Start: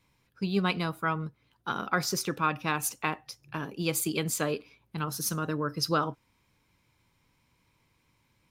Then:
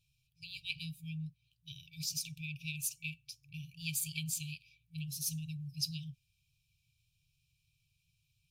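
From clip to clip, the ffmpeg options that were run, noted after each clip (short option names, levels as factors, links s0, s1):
-af "afftfilt=real='re*(1-between(b*sr/4096,170,2300))':imag='im*(1-between(b*sr/4096,170,2300))':win_size=4096:overlap=0.75,volume=0.562"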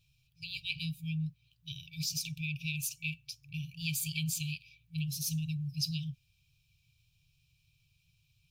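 -filter_complex "[0:a]equalizer=f=9600:t=o:w=1.1:g=-6,asplit=2[s0][s1];[s1]alimiter=level_in=2.82:limit=0.0631:level=0:latency=1:release=33,volume=0.355,volume=1.12[s2];[s0][s2]amix=inputs=2:normalize=0"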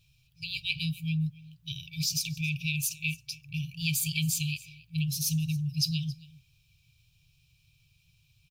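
-af "aecho=1:1:273:0.0891,volume=1.88"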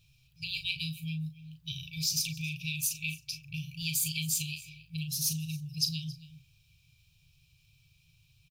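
-filter_complex "[0:a]acrossover=split=3200[s0][s1];[s0]acompressor=threshold=0.0141:ratio=6[s2];[s2][s1]amix=inputs=2:normalize=0,asplit=2[s3][s4];[s4]adelay=38,volume=0.398[s5];[s3][s5]amix=inputs=2:normalize=0"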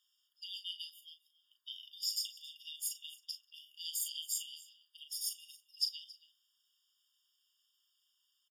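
-filter_complex "[0:a]asplit=2[s0][s1];[s1]adelay=190,highpass=300,lowpass=3400,asoftclip=type=hard:threshold=0.0596,volume=0.0631[s2];[s0][s2]amix=inputs=2:normalize=0,afftfilt=real='re*eq(mod(floor(b*sr/1024/930),2),1)':imag='im*eq(mod(floor(b*sr/1024/930),2),1)':win_size=1024:overlap=0.75,volume=0.668"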